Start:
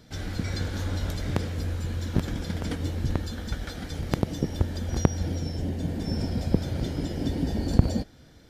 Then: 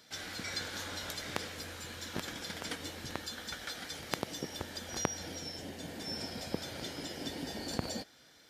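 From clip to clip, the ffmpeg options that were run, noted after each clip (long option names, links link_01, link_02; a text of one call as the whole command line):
ffmpeg -i in.wav -af "highpass=frequency=1400:poles=1,volume=1.5dB" out.wav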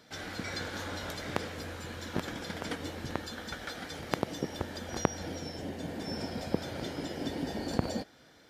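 ffmpeg -i in.wav -af "highshelf=frequency=2100:gain=-11,volume=6.5dB" out.wav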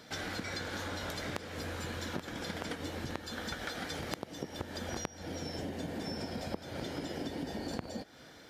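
ffmpeg -i in.wav -af "acompressor=threshold=-40dB:ratio=10,volume=5dB" out.wav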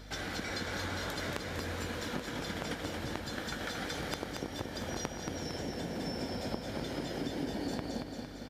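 ffmpeg -i in.wav -filter_complex "[0:a]aeval=exprs='val(0)+0.00355*(sin(2*PI*50*n/s)+sin(2*PI*2*50*n/s)/2+sin(2*PI*3*50*n/s)/3+sin(2*PI*4*50*n/s)/4+sin(2*PI*5*50*n/s)/5)':channel_layout=same,asplit=2[link_01][link_02];[link_02]aecho=0:1:228|456|684|912|1140|1368|1596|1824:0.562|0.326|0.189|0.11|0.0636|0.0369|0.0214|0.0124[link_03];[link_01][link_03]amix=inputs=2:normalize=0" out.wav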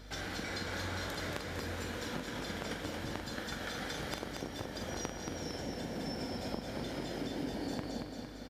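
ffmpeg -i in.wav -filter_complex "[0:a]asplit=2[link_01][link_02];[link_02]adelay=43,volume=-7dB[link_03];[link_01][link_03]amix=inputs=2:normalize=0,volume=-2.5dB" out.wav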